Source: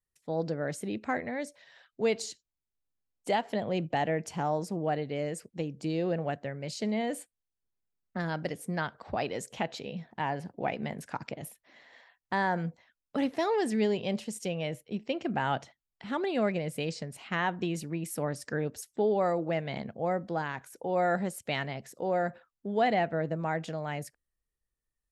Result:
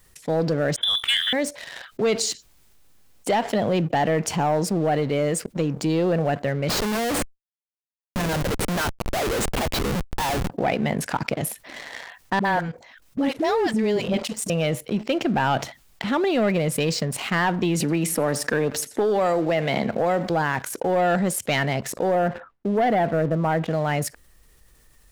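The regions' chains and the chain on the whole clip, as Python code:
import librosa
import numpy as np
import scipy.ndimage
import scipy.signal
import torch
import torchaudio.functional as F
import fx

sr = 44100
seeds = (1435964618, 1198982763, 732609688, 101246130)

y = fx.chain(x, sr, fx.transient(attack_db=4, sustain_db=0),
    fx.freq_invert(carrier_hz=3700), at=(0.76, 1.33))
y = fx.chain(y, sr, fx.highpass(hz=240.0, slope=12),
    fx.schmitt(flips_db=-42.0), at=(6.69, 10.5))
y = fx.chain(y, sr, fx.level_steps(step_db=15),
    fx.dispersion(late='highs', ms=62.0, hz=420.0), at=(12.39, 14.5))
y = fx.chain(y, sr, fx.highpass(hz=220.0, slope=6),
    fx.echo_feedback(ms=84, feedback_pct=34, wet_db=-23),
    fx.band_squash(depth_pct=70), at=(17.8, 20.3))
y = fx.chain(y, sr, fx.lowpass(hz=1700.0, slope=12),
    fx.gate_hold(open_db=-52.0, close_db=-56.0, hold_ms=71.0, range_db=-21, attack_ms=1.4, release_ms=100.0), at=(22.15, 23.71))
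y = fx.leveller(y, sr, passes=2)
y = fx.env_flatten(y, sr, amount_pct=50)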